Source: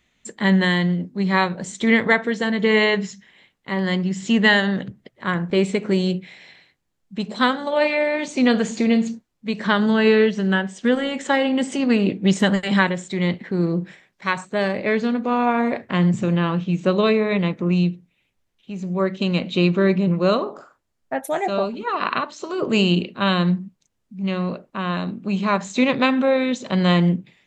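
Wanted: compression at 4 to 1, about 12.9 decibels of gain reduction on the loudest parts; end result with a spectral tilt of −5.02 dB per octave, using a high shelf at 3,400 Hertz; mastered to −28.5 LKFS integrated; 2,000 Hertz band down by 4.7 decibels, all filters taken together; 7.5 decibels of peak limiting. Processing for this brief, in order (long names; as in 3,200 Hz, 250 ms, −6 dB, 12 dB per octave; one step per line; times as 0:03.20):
parametric band 2,000 Hz −8 dB
high-shelf EQ 3,400 Hz +8 dB
downward compressor 4 to 1, threshold −29 dBFS
level +4 dB
brickwall limiter −18.5 dBFS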